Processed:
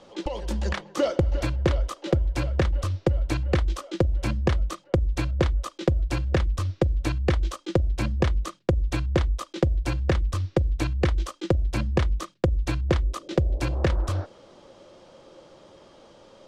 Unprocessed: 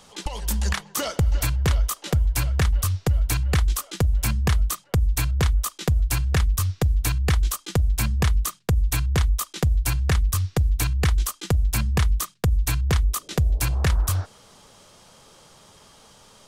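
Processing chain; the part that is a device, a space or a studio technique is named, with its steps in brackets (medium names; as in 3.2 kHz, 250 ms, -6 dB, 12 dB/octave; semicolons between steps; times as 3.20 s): inside a cardboard box (low-pass 4.5 kHz 12 dB/octave; small resonant body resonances 340/530 Hz, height 15 dB, ringing for 35 ms); trim -4 dB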